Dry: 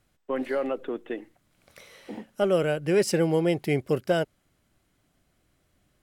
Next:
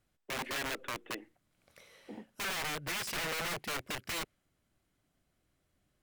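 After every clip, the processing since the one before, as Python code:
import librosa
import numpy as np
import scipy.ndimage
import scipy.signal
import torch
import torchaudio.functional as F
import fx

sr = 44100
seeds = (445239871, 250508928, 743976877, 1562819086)

y = (np.mod(10.0 ** (25.0 / 20.0) * x + 1.0, 2.0) - 1.0) / 10.0 ** (25.0 / 20.0)
y = fx.dynamic_eq(y, sr, hz=2100.0, q=0.94, threshold_db=-46.0, ratio=4.0, max_db=5)
y = y * librosa.db_to_amplitude(-8.5)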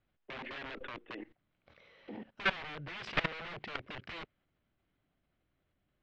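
y = scipy.signal.sosfilt(scipy.signal.butter(4, 3600.0, 'lowpass', fs=sr, output='sos'), x)
y = fx.level_steps(y, sr, step_db=18)
y = y * librosa.db_to_amplitude(10.0)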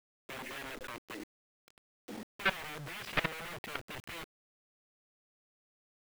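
y = fx.quant_dither(x, sr, seeds[0], bits=8, dither='none')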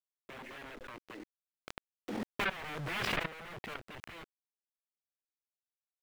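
y = fx.high_shelf(x, sr, hz=4800.0, db=-12.0)
y = fx.pre_swell(y, sr, db_per_s=21.0)
y = y * librosa.db_to_amplitude(-3.5)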